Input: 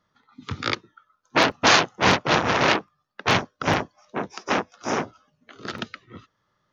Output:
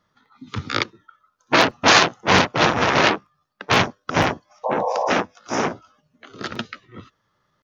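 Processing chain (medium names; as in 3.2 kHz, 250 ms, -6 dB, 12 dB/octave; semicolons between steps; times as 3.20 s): spectral replace 4.13–4.51 s, 460–1100 Hz after; tempo 0.88×; trim +3 dB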